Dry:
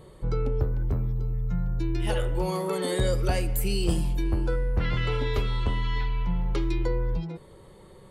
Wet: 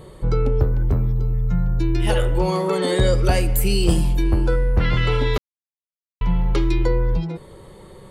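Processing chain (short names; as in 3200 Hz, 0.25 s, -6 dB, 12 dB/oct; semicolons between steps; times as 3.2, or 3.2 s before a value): 2.38–3.25 LPF 7300 Hz 12 dB/oct; 5.38–6.21 mute; gain +7.5 dB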